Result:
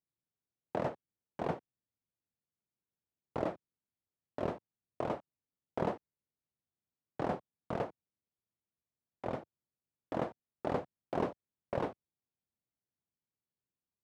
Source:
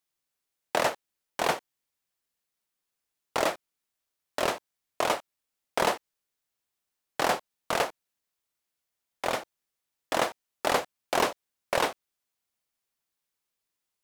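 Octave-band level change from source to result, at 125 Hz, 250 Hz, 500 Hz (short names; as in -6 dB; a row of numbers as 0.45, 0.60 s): +2.5, -1.5, -7.5 dB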